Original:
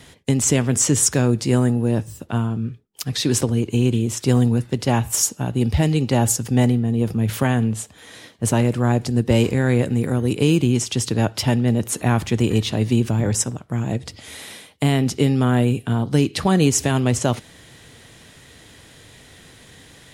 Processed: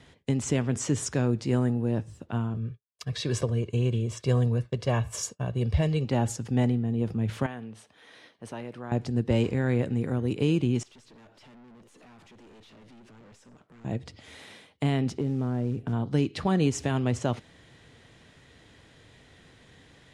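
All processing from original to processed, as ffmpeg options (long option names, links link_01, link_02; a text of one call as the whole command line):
ffmpeg -i in.wav -filter_complex "[0:a]asettb=1/sr,asplit=3[link_01][link_02][link_03];[link_01]atrim=end=2.544[link_04];[link_02]atrim=start=2.54:end=6.05,asetpts=PTS-STARTPTS,afade=type=in:duration=0.004:curve=qsin,afade=type=out:start_time=3.506:duration=0.004:curve=qsin,aecho=1:1:1.8:0.6,atrim=end_sample=154791,agate=range=-33dB:threshold=-31dB:ratio=3:release=100:detection=peak[link_05];[link_03]atrim=start=6.046[link_06];[link_04][link_05]acrossfade=duration=0.004:curve1=hsin:curve2=qsin[link_07];[link_07][link_06]acrossfade=duration=0.004:curve1=qsin:curve2=hsin,asettb=1/sr,asplit=3[link_08][link_09][link_10];[link_08]atrim=end=7.464[link_11];[link_09]atrim=start=7.46:end=8.92,asetpts=PTS-STARTPTS,afade=type=in:duration=0.004:curve=qsin,afade=type=out:start_time=1.456:duration=0.004:curve=qsin,highpass=frequency=420:poles=1,equalizer=frequency=7300:width=6.8:gain=-14,acompressor=threshold=-37dB:ratio=1.5:attack=3.2:release=140:knee=1:detection=peak[link_12];[link_10]atrim=start=8.916[link_13];[link_11][link_12]acrossfade=duration=0.004:curve1=hsin:curve2=qsin[link_14];[link_14][link_13]acrossfade=duration=0.004:curve1=qsin:curve2=hsin,asettb=1/sr,asplit=3[link_15][link_16][link_17];[link_15]atrim=end=10.834[link_18];[link_16]atrim=start=10.83:end=13.85,asetpts=PTS-STARTPTS,afade=type=in:duration=0.004:curve=qsin,afade=type=out:start_time=3.016:duration=0.004:curve=qsin,highpass=230,acompressor=threshold=-30dB:ratio=2.5:attack=3.2:release=140:knee=1:detection=peak,aeval=exprs='(tanh(141*val(0)+0.25)-tanh(0.25))/141':channel_layout=same[link_19];[link_17]atrim=start=13.846[link_20];[link_18][link_19]acrossfade=duration=0.004:curve1=hsin:curve2=qsin[link_21];[link_21][link_20]acrossfade=duration=0.004:curve1=qsin:curve2=hsin,asettb=1/sr,asplit=3[link_22][link_23][link_24];[link_22]atrim=end=15.184[link_25];[link_23]atrim=start=15.18:end=15.93,asetpts=PTS-STARTPTS,afade=type=in:duration=0.004:curve=qsin,afade=type=out:start_time=0.746:duration=0.004:curve=qsin,tiltshelf=frequency=1500:gain=8.5,acompressor=threshold=-21dB:ratio=3:attack=3.2:release=140:knee=1:detection=peak,acrusher=bits=7:mode=log:mix=0:aa=0.000001[link_26];[link_24]atrim=start=15.926[link_27];[link_25][link_26]acrossfade=duration=0.004:curve1=hsin:curve2=qsin[link_28];[link_28][link_27]acrossfade=duration=0.004:curve1=qsin:curve2=hsin,lowpass=10000,aemphasis=mode=reproduction:type=50kf,volume=-7.5dB" out.wav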